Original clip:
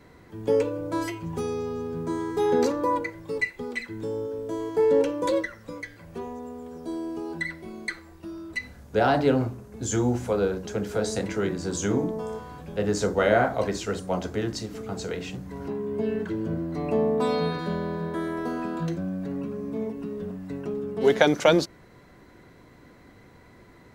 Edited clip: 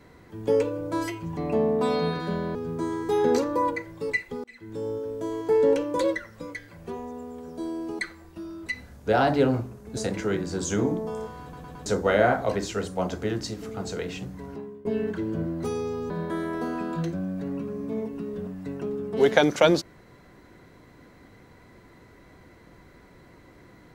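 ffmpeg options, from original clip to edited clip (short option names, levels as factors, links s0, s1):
-filter_complex "[0:a]asplit=13[s0][s1][s2][s3][s4][s5][s6][s7][s8][s9][s10][s11][s12];[s0]atrim=end=1.372[s13];[s1]atrim=start=16.758:end=17.942[s14];[s2]atrim=start=1.828:end=3.72,asetpts=PTS-STARTPTS,afade=t=out:st=1.888:d=0.004:c=hsin[s15];[s3]atrim=start=3.72:end=7.272,asetpts=PTS-STARTPTS,afade=t=in:d=0.43[s16];[s4]atrim=start=7.858:end=9.842[s17];[s5]atrim=start=11.088:end=12.652[s18];[s6]atrim=start=12.538:end=12.652[s19];[s7]atrim=start=12.538:end=12.652[s20];[s8]atrim=start=12.538:end=12.652[s21];[s9]atrim=start=12.978:end=15.97,asetpts=PTS-STARTPTS,afade=t=out:st=2.452:d=0.54:silence=0.0891251[s22];[s10]atrim=start=15.97:end=16.762,asetpts=PTS-STARTPTS,afade=t=in:d=0.004:c=hsin:silence=0.0891251[s23];[s11]atrim=start=1.368:end=1.832[s24];[s12]atrim=start=17.938[s25];[s13][s14]acrossfade=d=0.004:c1=hsin:c2=hsin[s26];[s15][s16]concat=n=2:v=0:a=1[s27];[s26][s27]acrossfade=d=0.004:c1=hsin:c2=hsin[s28];[s28][s17]acrossfade=d=0.004:c1=hsin:c2=hsin[s29];[s29][s18]acrossfade=d=0.004:c1=hsin:c2=hsin[s30];[s30][s19]acrossfade=d=0.004:c1=hsin:c2=hsin[s31];[s31][s20]acrossfade=d=0.004:c1=hsin:c2=hsin[s32];[s32][s21]acrossfade=d=0.004:c1=hsin:c2=hsin[s33];[s22][s23]concat=n=2:v=0:a=1[s34];[s33][s34]acrossfade=d=0.004:c1=hsin:c2=hsin[s35];[s35][s24]acrossfade=d=0.004:c1=hsin:c2=hsin[s36];[s36][s25]acrossfade=d=0.004:c1=hsin:c2=hsin"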